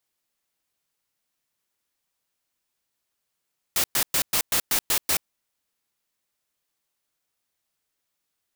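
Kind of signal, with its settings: noise bursts white, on 0.08 s, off 0.11 s, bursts 8, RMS -22 dBFS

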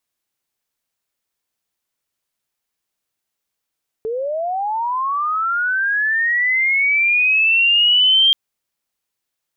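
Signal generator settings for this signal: chirp linear 430 Hz -> 3200 Hz -20 dBFS -> -9.5 dBFS 4.28 s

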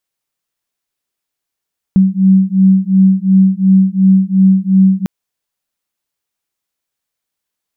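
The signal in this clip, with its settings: beating tones 189 Hz, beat 2.8 Hz, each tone -9.5 dBFS 3.10 s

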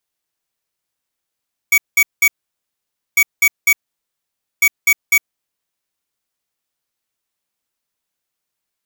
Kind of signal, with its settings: beep pattern square 2260 Hz, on 0.06 s, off 0.19 s, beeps 3, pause 0.89 s, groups 3, -11 dBFS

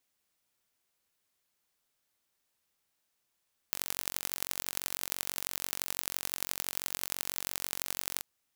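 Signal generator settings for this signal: pulse train 46/s, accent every 4, -4 dBFS 4.50 s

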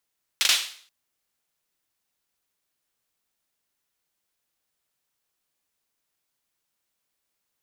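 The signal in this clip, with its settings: hand clap length 0.48 s, bursts 3, apart 40 ms, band 3400 Hz, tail 0.49 s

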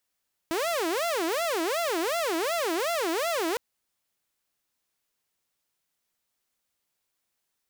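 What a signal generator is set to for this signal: siren wail 321–689 Hz 2.7/s saw -23 dBFS 3.06 s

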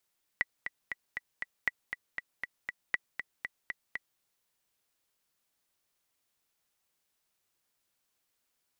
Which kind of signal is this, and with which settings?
metronome 237 bpm, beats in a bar 5, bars 3, 1960 Hz, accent 8 dB -14 dBFS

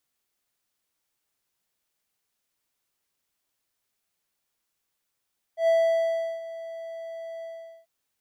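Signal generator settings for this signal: ADSR triangle 660 Hz, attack 0.106 s, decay 0.726 s, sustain -17.5 dB, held 1.86 s, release 0.43 s -15 dBFS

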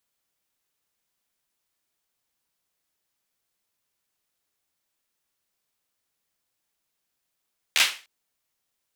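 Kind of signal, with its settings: hand clap length 0.30 s, apart 13 ms, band 2600 Hz, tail 0.34 s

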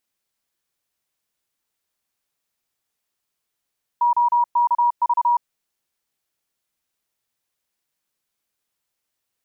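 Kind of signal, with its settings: Morse "OKV" 31 wpm 958 Hz -14 dBFS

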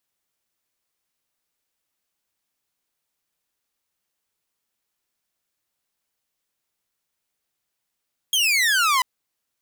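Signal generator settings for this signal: laser zap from 3300 Hz, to 980 Hz, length 0.69 s saw, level -14 dB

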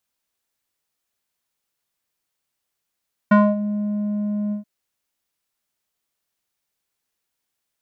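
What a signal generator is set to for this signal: synth note square G#3 12 dB/oct, low-pass 380 Hz, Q 2.3, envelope 2 oct, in 0.32 s, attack 8.3 ms, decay 0.23 s, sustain -13.5 dB, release 0.12 s, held 1.21 s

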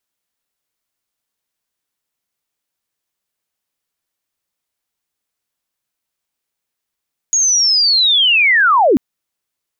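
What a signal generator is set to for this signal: chirp linear 6700 Hz -> 220 Hz -10.5 dBFS -> -7.5 dBFS 1.64 s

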